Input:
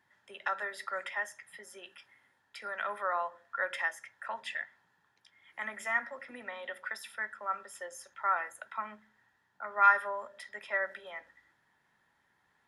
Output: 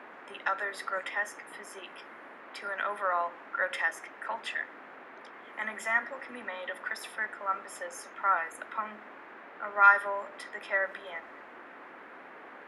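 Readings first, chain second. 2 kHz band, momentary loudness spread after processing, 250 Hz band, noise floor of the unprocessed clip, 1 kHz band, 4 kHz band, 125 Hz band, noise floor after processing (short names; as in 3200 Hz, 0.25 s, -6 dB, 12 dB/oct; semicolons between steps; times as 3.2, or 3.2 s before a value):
+3.0 dB, 20 LU, +6.0 dB, -74 dBFS, +3.0 dB, +3.0 dB, n/a, -50 dBFS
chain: band noise 240–1900 Hz -52 dBFS; gain +3 dB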